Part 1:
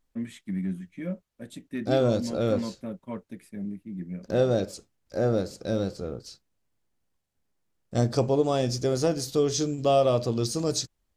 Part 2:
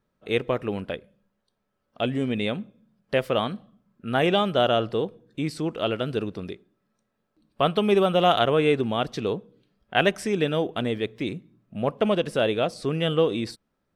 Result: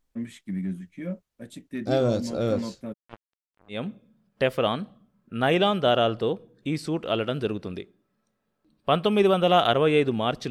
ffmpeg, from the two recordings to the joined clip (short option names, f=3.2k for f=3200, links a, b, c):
-filter_complex "[0:a]asplit=3[a][b][c];[a]afade=t=out:st=2.92:d=0.02[d];[b]acrusher=bits=3:mix=0:aa=0.5,afade=t=in:st=2.92:d=0.02,afade=t=out:st=3.84:d=0.02[e];[c]afade=t=in:st=3.84:d=0.02[f];[d][e][f]amix=inputs=3:normalize=0,apad=whole_dur=10.5,atrim=end=10.5,atrim=end=3.84,asetpts=PTS-STARTPTS[g];[1:a]atrim=start=2.4:end=9.22,asetpts=PTS-STARTPTS[h];[g][h]acrossfade=d=0.16:c1=tri:c2=tri"